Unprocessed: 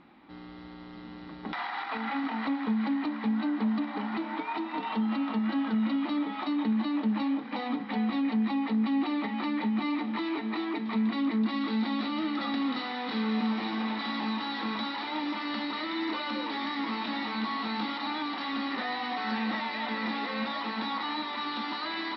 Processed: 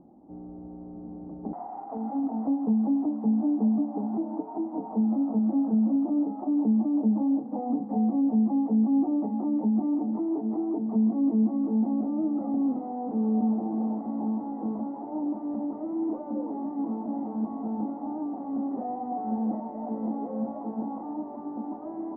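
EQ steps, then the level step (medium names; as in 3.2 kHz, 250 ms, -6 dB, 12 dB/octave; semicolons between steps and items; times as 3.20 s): Chebyshev low-pass 740 Hz, order 4; +4.5 dB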